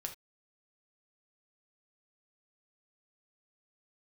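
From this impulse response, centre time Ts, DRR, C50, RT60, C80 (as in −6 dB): 11 ms, 3.0 dB, 11.0 dB, non-exponential decay, 19.5 dB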